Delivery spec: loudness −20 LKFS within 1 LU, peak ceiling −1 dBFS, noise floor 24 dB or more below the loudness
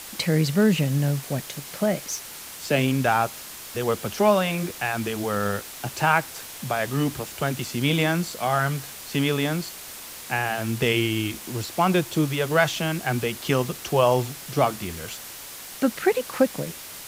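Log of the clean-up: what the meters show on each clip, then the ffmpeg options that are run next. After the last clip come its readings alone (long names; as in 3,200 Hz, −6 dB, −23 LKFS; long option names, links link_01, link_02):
background noise floor −40 dBFS; target noise floor −49 dBFS; integrated loudness −24.5 LKFS; sample peak −4.5 dBFS; target loudness −20.0 LKFS
→ -af "afftdn=noise_reduction=9:noise_floor=-40"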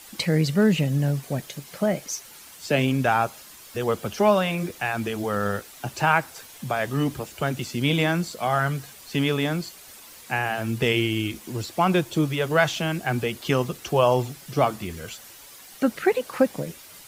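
background noise floor −46 dBFS; target noise floor −49 dBFS
→ -af "afftdn=noise_reduction=6:noise_floor=-46"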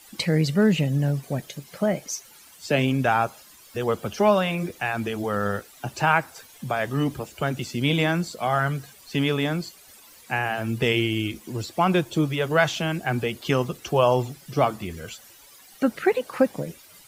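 background noise floor −50 dBFS; integrated loudness −24.5 LKFS; sample peak −4.5 dBFS; target loudness −20.0 LKFS
→ -af "volume=4.5dB,alimiter=limit=-1dB:level=0:latency=1"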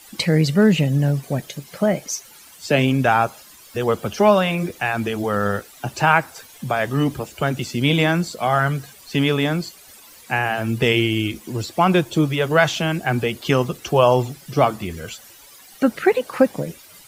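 integrated loudness −20.0 LKFS; sample peak −1.0 dBFS; background noise floor −46 dBFS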